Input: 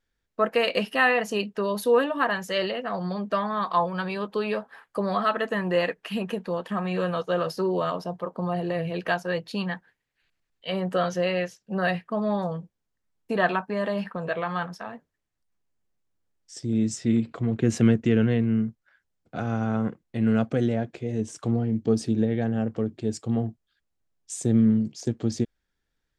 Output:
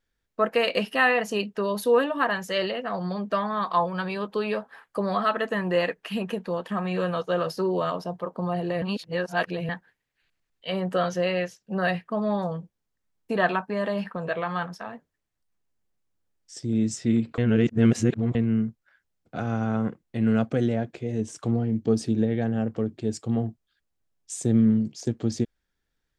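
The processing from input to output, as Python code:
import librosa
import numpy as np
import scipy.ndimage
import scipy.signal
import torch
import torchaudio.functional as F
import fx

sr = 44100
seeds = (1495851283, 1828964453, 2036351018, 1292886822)

y = fx.edit(x, sr, fx.reverse_span(start_s=8.82, length_s=0.87),
    fx.reverse_span(start_s=17.38, length_s=0.97), tone=tone)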